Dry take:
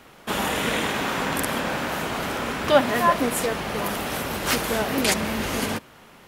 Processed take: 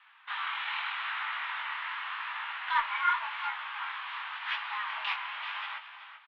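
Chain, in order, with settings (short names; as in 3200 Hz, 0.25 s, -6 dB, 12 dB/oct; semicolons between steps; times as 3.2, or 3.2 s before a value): mistuned SSB +380 Hz 580–3000 Hz; on a send: feedback echo 0.381 s, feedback 21%, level -11 dB; on the sum: added harmonics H 4 -37 dB, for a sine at -6.5 dBFS; chorus 0.86 Hz, delay 16.5 ms, depth 7.9 ms; gain -4.5 dB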